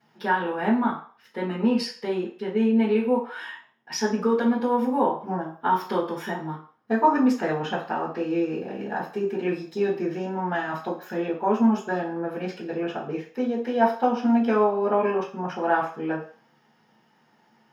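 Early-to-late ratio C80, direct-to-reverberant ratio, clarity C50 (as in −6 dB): 12.5 dB, −12.0 dB, 7.5 dB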